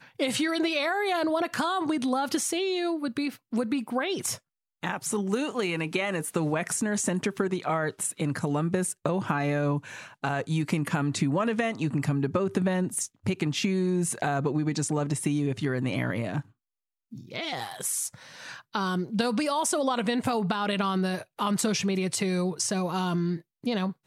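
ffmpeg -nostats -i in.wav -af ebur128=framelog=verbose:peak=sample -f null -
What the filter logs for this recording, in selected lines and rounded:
Integrated loudness:
  I:         -28.1 LUFS
  Threshold: -38.3 LUFS
Loudness range:
  LRA:         3.2 LU
  Threshold: -48.4 LUFS
  LRA low:   -30.4 LUFS
  LRA high:  -27.2 LUFS
Sample peak:
  Peak:      -13.7 dBFS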